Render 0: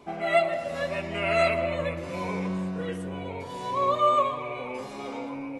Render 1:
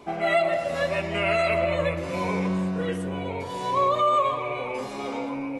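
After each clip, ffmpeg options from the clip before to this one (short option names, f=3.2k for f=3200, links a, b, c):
-af "bandreject=f=50:t=h:w=6,bandreject=f=100:t=h:w=6,bandreject=f=150:t=h:w=6,bandreject=f=200:t=h:w=6,bandreject=f=250:t=h:w=6,alimiter=limit=-18.5dB:level=0:latency=1:release=47,volume=4.5dB"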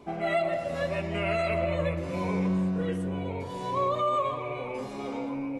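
-af "lowshelf=f=420:g=8,volume=-7dB"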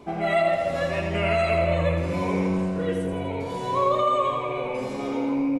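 -af "aecho=1:1:83|166|249|332|415|498|581:0.501|0.286|0.163|0.0928|0.0529|0.0302|0.0172,volume=4dB"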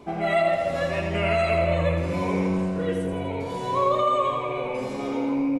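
-af anull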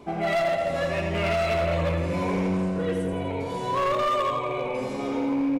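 -af "asoftclip=type=hard:threshold=-20.5dB"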